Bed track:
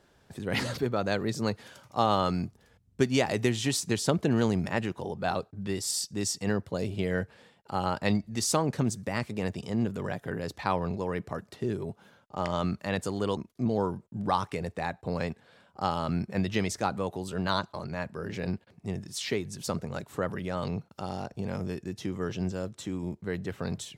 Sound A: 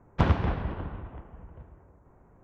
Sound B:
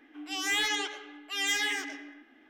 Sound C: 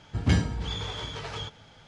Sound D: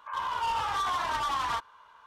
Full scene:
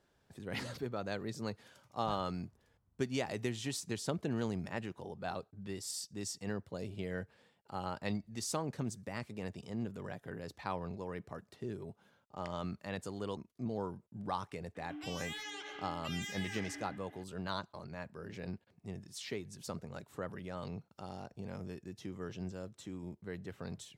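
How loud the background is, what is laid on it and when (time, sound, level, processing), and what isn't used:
bed track -10.5 dB
1.88 add A -15 dB + spectral noise reduction 28 dB
14.75 add B -1 dB + compressor, threshold -41 dBFS
not used: C, D

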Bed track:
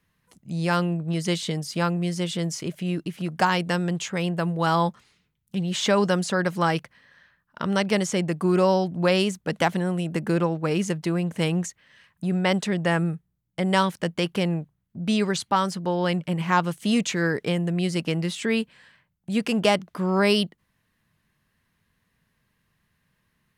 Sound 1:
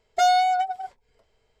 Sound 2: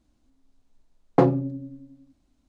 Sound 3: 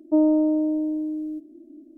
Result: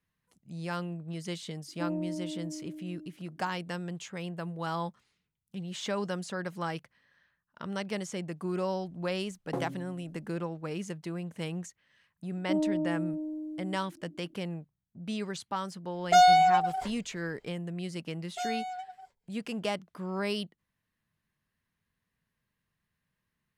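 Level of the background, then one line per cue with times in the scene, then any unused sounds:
bed track -12 dB
1.68 add 3 -16 dB
8.35 add 2 -16.5 dB + CVSD 64 kbps
12.37 add 3 -10.5 dB
15.94 add 1 + sustainer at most 140 dB/s
18.19 add 1 -16.5 dB + high shelf 4800 Hz +7 dB

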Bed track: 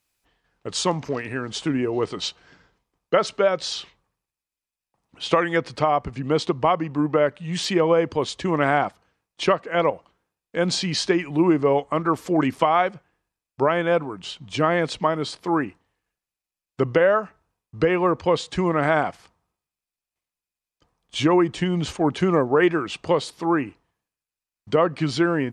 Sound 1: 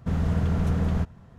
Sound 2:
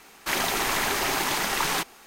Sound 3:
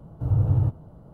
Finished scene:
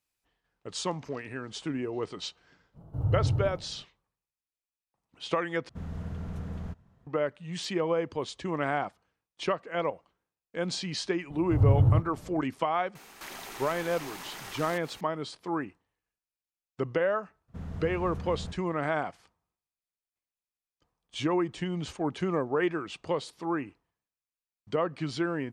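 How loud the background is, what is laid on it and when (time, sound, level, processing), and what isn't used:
bed track -9.5 dB
2.73 add 3 -6.5 dB, fades 0.05 s + sustainer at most 100 dB/s
5.69 replace with 1 -13 dB
11.3 add 3 -0.5 dB
12.95 add 2 -1 dB + compressor 3:1, threshold -44 dBFS
17.48 add 1 -14 dB

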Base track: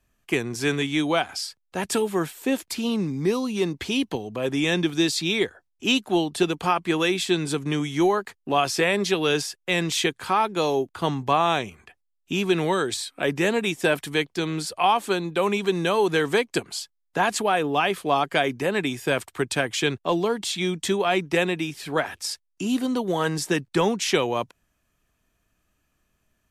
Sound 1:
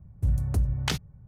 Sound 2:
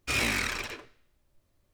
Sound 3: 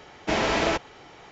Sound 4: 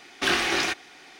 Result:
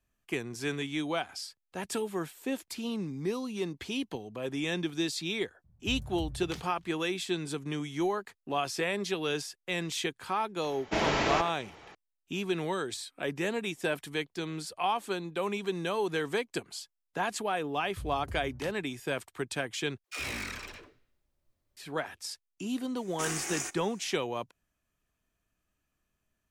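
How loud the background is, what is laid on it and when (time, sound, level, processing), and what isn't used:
base track -9.5 dB
5.64 add 1 -14.5 dB + thinning echo 97 ms, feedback 48%, level -19 dB
10.64 add 3 -4.5 dB + speakerphone echo 90 ms, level -9 dB
17.74 add 1 -17 dB
20.04 replace with 2 -8.5 dB + dispersion lows, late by 81 ms, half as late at 390 Hz
22.97 add 4 -13.5 dB + resonant high shelf 5400 Hz +11.5 dB, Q 3

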